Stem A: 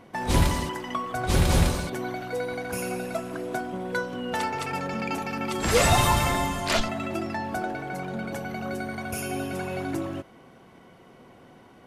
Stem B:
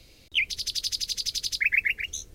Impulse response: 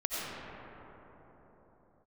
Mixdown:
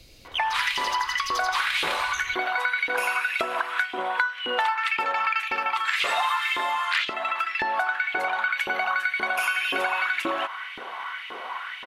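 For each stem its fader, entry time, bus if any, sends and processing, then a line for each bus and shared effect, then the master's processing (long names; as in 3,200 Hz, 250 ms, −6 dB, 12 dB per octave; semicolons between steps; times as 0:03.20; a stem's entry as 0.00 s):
−2.5 dB, 0.25 s, no send, flat-topped bell 1,900 Hz +14 dB 2.5 octaves; automatic gain control gain up to 9.5 dB; auto-filter high-pass saw up 1.9 Hz 360–2,800 Hz
−1.5 dB, 0.00 s, send −5 dB, downward compressor, threshold −29 dBFS, peak gain reduction 10.5 dB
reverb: on, pre-delay 50 ms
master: downward compressor 5 to 1, threshold −23 dBFS, peak gain reduction 14.5 dB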